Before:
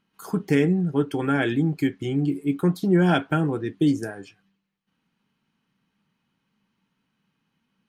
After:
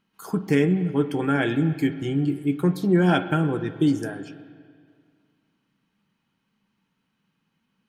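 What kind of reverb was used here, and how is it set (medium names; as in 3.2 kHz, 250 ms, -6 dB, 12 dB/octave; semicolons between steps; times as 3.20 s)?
spring tank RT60 2.1 s, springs 44/49 ms, chirp 20 ms, DRR 11.5 dB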